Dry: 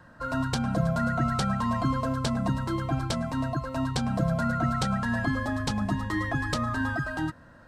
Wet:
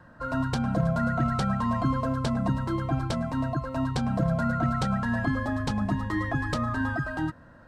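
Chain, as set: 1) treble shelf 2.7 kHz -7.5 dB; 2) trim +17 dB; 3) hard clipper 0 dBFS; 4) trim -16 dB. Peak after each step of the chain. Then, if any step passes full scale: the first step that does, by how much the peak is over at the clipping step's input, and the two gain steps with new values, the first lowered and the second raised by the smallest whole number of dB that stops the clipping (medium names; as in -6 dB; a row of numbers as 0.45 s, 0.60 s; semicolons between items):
-14.0 dBFS, +3.0 dBFS, 0.0 dBFS, -16.0 dBFS; step 2, 3.0 dB; step 2 +14 dB, step 4 -13 dB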